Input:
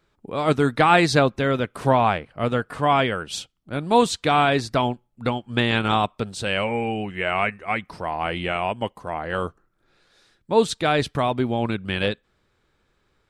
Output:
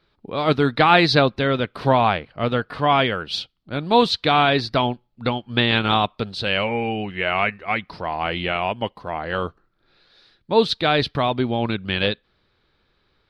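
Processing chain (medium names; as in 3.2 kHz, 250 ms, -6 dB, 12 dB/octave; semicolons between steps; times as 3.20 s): resonant high shelf 5.7 kHz -10 dB, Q 3; trim +1 dB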